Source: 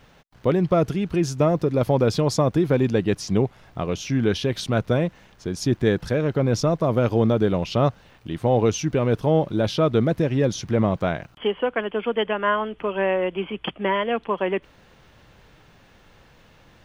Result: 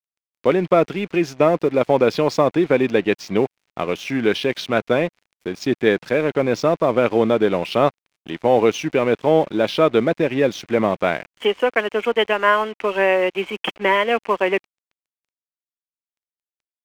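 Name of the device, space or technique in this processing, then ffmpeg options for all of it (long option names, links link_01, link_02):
pocket radio on a weak battery: -af "highpass=280,lowpass=4300,aeval=exprs='sgn(val(0))*max(abs(val(0))-0.00531,0)':channel_layout=same,equalizer=frequency=2300:width_type=o:width=0.58:gain=6,volume=5.5dB"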